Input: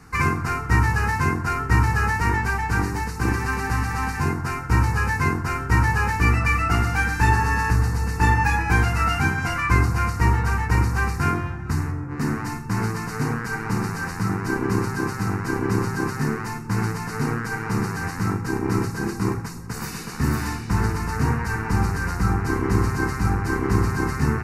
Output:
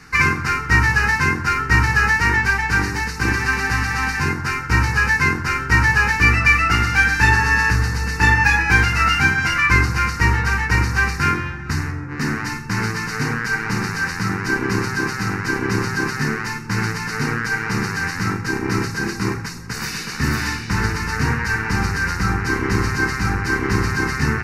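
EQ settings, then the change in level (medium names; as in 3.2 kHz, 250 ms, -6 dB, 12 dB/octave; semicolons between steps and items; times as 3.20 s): high-order bell 3 kHz +9 dB 2.3 oct; hum notches 50/100 Hz; band-stop 700 Hz, Q 15; +1.0 dB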